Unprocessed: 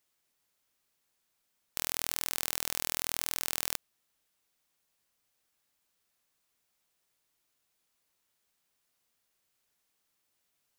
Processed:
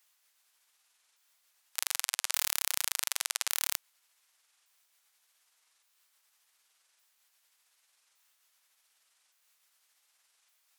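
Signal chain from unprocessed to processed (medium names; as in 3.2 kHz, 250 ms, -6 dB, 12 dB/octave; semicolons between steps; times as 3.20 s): sawtooth pitch modulation -11.5 st, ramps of 1165 ms; high-pass 920 Hz 12 dB/octave; in parallel at -0.5 dB: compressor with a negative ratio -40 dBFS, ratio -0.5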